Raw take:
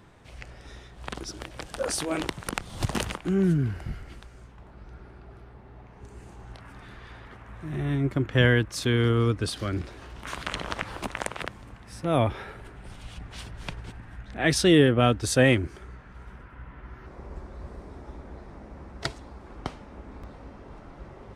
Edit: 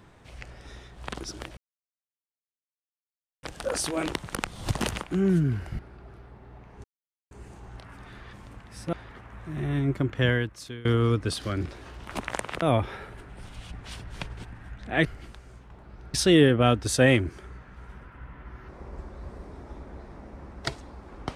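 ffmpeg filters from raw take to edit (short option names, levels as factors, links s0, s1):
-filter_complex "[0:a]asplit=11[s0][s1][s2][s3][s4][s5][s6][s7][s8][s9][s10];[s0]atrim=end=1.57,asetpts=PTS-STARTPTS,afade=t=out:st=1.566:d=0.004:c=hsin,apad=pad_dur=1.86[s11];[s1]atrim=start=1.57:end=3.932,asetpts=PTS-STARTPTS,afade=t=in:d=0.004:c=hsin[s12];[s2]atrim=start=5.018:end=6.07,asetpts=PTS-STARTPTS,afade=t=out:st=1.048:d=0.004:c=hsin,apad=pad_dur=0.47[s13];[s3]atrim=start=6.07:end=7.092,asetpts=PTS-STARTPTS,afade=t=in:d=0.004:c=hsin[s14];[s4]atrim=start=11.488:end=12.092[s15];[s5]atrim=start=7.088:end=9.01,asetpts=PTS-STARTPTS,afade=t=out:st=1.042:d=0.88:silence=0.0707946[s16];[s6]atrim=start=9.01:end=10.272,asetpts=PTS-STARTPTS,afade=t=in:d=0.004:c=hsin:silence=0.0707946[s17];[s7]atrim=start=10.978:end=11.492[s18];[s8]atrim=start=12.088:end=14.522[s19];[s9]atrim=start=3.928:end=5.022[s20];[s10]atrim=start=14.518[s21];[s11][s12]concat=n=2:v=0:a=1[s22];[s13][s14]concat=n=2:v=0:a=1[s23];[s22][s23]acrossfade=d=0.004:c1=hsin:c2=hsin[s24];[s24][s15]acrossfade=d=0.004:c1=hsin:c2=hsin[s25];[s16][s17]concat=n=2:v=0:a=1[s26];[s25][s26]acrossfade=d=0.004:c1=hsin:c2=hsin[s27];[s27][s18]acrossfade=d=0.004:c1=hsin:c2=hsin[s28];[s28][s19]acrossfade=d=0.004:c1=hsin:c2=hsin[s29];[s29][s20]acrossfade=d=0.004:c1=hsin:c2=hsin[s30];[s30][s21]acrossfade=d=0.004:c1=hsin:c2=hsin"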